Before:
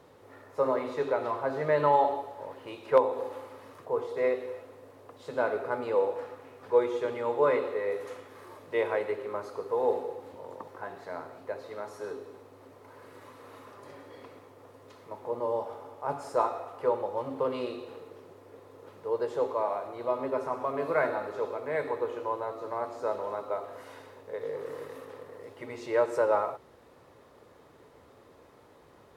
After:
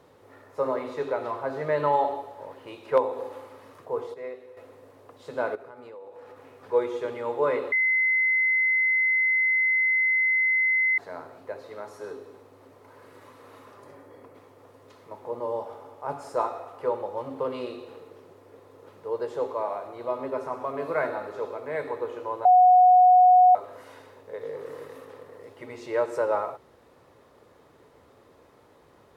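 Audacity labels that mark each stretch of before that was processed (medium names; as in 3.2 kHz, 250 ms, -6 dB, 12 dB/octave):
4.140000	4.570000	gain -10 dB
5.550000	6.530000	compression, threshold -42 dBFS
7.720000	10.980000	bleep 2.05 kHz -19.5 dBFS
13.830000	14.340000	peaking EQ 3.7 kHz -5 dB -> -13.5 dB 1.7 oct
22.450000	23.550000	bleep 731 Hz -12 dBFS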